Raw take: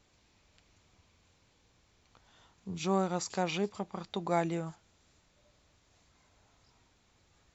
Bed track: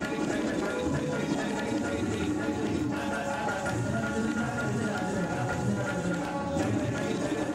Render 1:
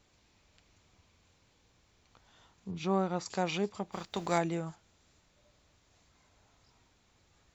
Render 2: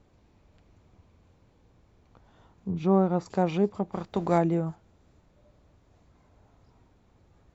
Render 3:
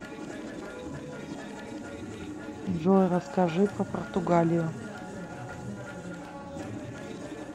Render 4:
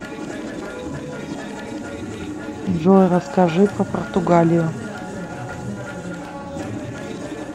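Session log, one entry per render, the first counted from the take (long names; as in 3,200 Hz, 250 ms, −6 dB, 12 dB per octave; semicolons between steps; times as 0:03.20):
0:02.71–0:03.26: high-frequency loss of the air 130 metres; 0:03.91–0:04.37: compressing power law on the bin magnitudes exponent 0.7
tilt shelving filter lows +9.5 dB, about 1,500 Hz
mix in bed track −9.5 dB
level +9.5 dB; brickwall limiter −2 dBFS, peak gain reduction 1.5 dB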